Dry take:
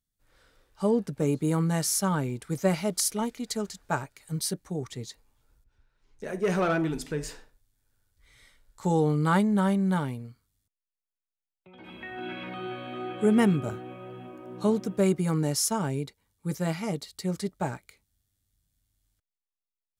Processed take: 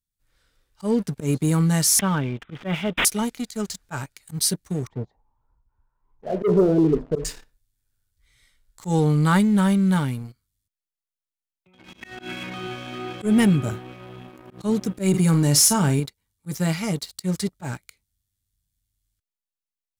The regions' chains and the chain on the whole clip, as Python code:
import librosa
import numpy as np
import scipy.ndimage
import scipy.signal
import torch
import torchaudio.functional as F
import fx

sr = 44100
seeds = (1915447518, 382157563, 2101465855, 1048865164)

y = fx.chain(x, sr, fx.low_shelf(hz=170.0, db=-5.0),
    fx.resample_bad(factor=6, down='none', up='filtered'), at=(1.99, 3.05))
y = fx.chain(y, sr, fx.block_float(bits=7),
    fx.envelope_lowpass(base_hz=420.0, top_hz=1000.0, q=6.9, full_db=-25.0, direction='down'), at=(4.87, 7.25))
y = fx.chain(y, sr, fx.doubler(ms=48.0, db=-13.0),
    fx.env_flatten(amount_pct=50), at=(15.09, 16.0))
y = fx.peak_eq(y, sr, hz=600.0, db=-8.5, octaves=2.9)
y = fx.leveller(y, sr, passes=2)
y = fx.auto_swell(y, sr, attack_ms=101.0)
y = F.gain(torch.from_numpy(y), 2.5).numpy()